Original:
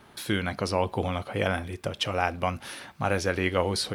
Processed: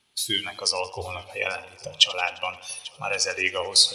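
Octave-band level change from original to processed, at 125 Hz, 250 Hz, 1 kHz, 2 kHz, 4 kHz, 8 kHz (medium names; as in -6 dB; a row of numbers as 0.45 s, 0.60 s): -13.5 dB, -11.5 dB, -2.5 dB, +3.0 dB, +12.5 dB, +12.5 dB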